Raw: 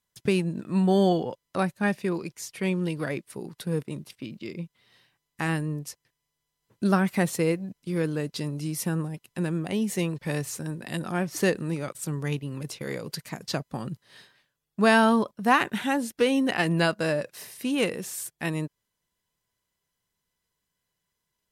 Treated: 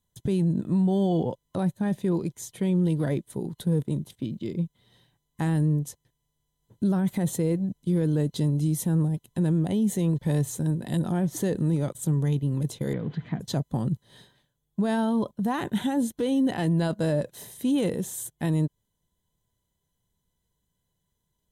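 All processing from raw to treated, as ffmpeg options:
-filter_complex "[0:a]asettb=1/sr,asplit=3[a][b][c];[a]atrim=end=12.934[d];[b]atrim=start=12.93:end=13.4,asetpts=PTS-STARTPTS,afade=t=in:d=0.004:c=qsin,afade=t=out:st=0.466:d=0.004:c=qsin,aeval=exprs='val(0)+0.5*0.0106*sgn(val(0))':c=same,highpass=120,equalizer=f=380:t=q:w=4:g=-4,equalizer=f=560:t=q:w=4:g=-9,equalizer=f=910:t=q:w=4:g=-6,lowpass=f=2.8k:w=0.5412,lowpass=f=2.8k:w=1.3066[e];[c]atrim=start=13.396[f];[d][e]acrossfade=d=0.004:c1=hsin:c2=qsin[g];[g][f]acrossfade=d=0.004:c1=qsin:c2=hsin,lowshelf=f=250:g=12,alimiter=limit=-17.5dB:level=0:latency=1:release=14,superequalizer=10b=0.447:11b=0.501:12b=0.316:14b=0.398"

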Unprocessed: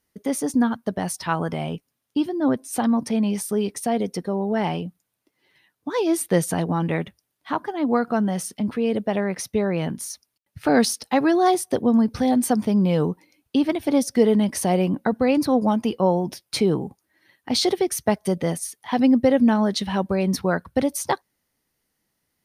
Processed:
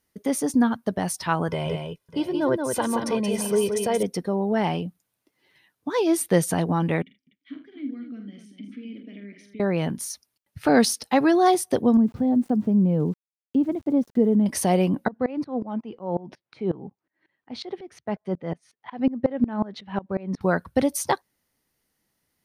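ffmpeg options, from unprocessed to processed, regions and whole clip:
-filter_complex "[0:a]asettb=1/sr,asplit=3[a][b][c];[a]atrim=end=1.484[d];[b]atrim=start=1.48:end=4.03,asetpts=PTS-STARTPTS,afade=t=in:d=0.004:c=qsin,afade=t=out:st=2.546:d=0.004:c=qsin,highshelf=f=9.5k:g=-4,aecho=1:1:2:0.65,atrim=end_sample=112455,aecho=1:1:177|606|655:0.562|0.15|0.141,atrim=end_sample=112455[e];[c]atrim=start=4.026[f];[d][e]acrossfade=d=0.004:c1=hsin:c2=qsin[g];[g][f]acrossfade=d=0.004:c1=qsin:c2=hsin,asettb=1/sr,asplit=3[h][i][j];[h]atrim=end=7.024[k];[i]atrim=start=7.02:end=9.6,asetpts=PTS-STARTPTS,afade=t=in:d=0.004:c=qsin,afade=t=out:st=2.576:d=0.004:c=qsin,acompressor=threshold=-32dB:ratio=1.5:attack=3.2:release=140:knee=1:detection=peak,asplit=3[l][m][n];[l]bandpass=f=270:t=q:w=8,volume=0dB[o];[m]bandpass=f=2.29k:t=q:w=8,volume=-6dB[p];[n]bandpass=f=3.01k:t=q:w=8,volume=-9dB[q];[o][p][q]amix=inputs=3:normalize=0,aecho=1:1:45|79|247:0.447|0.237|0.282,atrim=end_sample=113778[r];[j]atrim=start=9.596[s];[k][r]acrossfade=d=0.004:c1=hsin:c2=qsin[t];[t][s]acrossfade=d=0.004:c1=qsin:c2=hsin,asettb=1/sr,asplit=3[u][v][w];[u]atrim=end=11.974[x];[v]atrim=start=11.97:end=14.46,asetpts=PTS-STARTPTS,afade=t=in:d=0.004:c=qsin,afade=t=out:st=2.486:d=0.004:c=qsin,bandpass=f=190:t=q:w=0.72,aeval=exprs='val(0)*gte(abs(val(0)),0.00355)':c=same[y];[w]atrim=start=14.456[z];[x][y]acrossfade=d=0.004:c1=hsin:c2=qsin[aa];[aa][z]acrossfade=d=0.004:c1=qsin:c2=hsin,asettb=1/sr,asplit=3[ab][ac][ad];[ab]atrim=end=15.084[ae];[ac]atrim=start=15.08:end=20.41,asetpts=PTS-STARTPTS,afade=t=in:d=0.004:c=qsin,afade=t=out:st=5.326:d=0.004:c=qsin,highpass=100,lowpass=2.3k,aeval=exprs='val(0)*pow(10,-23*if(lt(mod(-5.5*n/s,1),2*abs(-5.5)/1000),1-mod(-5.5*n/s,1)/(2*abs(-5.5)/1000),(mod(-5.5*n/s,1)-2*abs(-5.5)/1000)/(1-2*abs(-5.5)/1000))/20)':c=same[af];[ad]atrim=start=20.406[ag];[ae][af]acrossfade=d=0.004:c1=hsin:c2=qsin[ah];[ah][ag]acrossfade=d=0.004:c1=qsin:c2=hsin"

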